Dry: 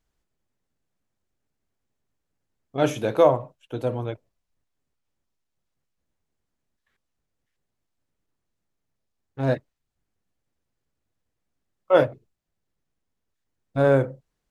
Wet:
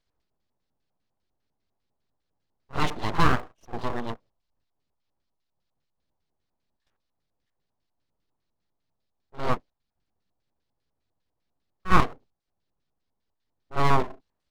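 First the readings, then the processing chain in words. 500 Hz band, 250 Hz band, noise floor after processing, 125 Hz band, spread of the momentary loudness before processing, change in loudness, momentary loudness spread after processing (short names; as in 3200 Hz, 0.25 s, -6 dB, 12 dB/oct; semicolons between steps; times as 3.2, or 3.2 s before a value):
-12.5 dB, -3.0 dB, -80 dBFS, -2.5 dB, 15 LU, -4.0 dB, 15 LU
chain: LFO low-pass square 5 Hz 890–4400 Hz; pre-echo 50 ms -14.5 dB; full-wave rectifier; gain -1.5 dB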